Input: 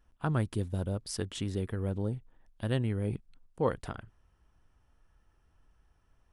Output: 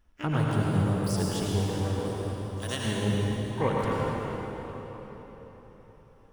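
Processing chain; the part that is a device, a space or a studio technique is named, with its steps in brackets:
0:01.99–0:02.86: spectral tilt +4 dB per octave
shimmer-style reverb (pitch-shifted copies added +12 semitones −8 dB; convolution reverb RT60 4.3 s, pre-delay 73 ms, DRR −4 dB)

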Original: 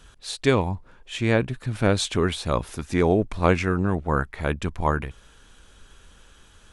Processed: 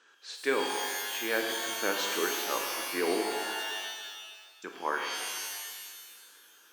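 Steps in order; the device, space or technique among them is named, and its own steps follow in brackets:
phone speaker on a table (loudspeaker in its box 330–6,600 Hz, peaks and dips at 660 Hz −7 dB, 1,600 Hz +7 dB, 3,600 Hz −4 dB)
0:03.32–0:04.64: inverse Chebyshev band-stop filter 100–2,600 Hz, stop band 40 dB
reverb with rising layers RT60 1.6 s, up +12 semitones, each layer −2 dB, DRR 2.5 dB
level −8 dB

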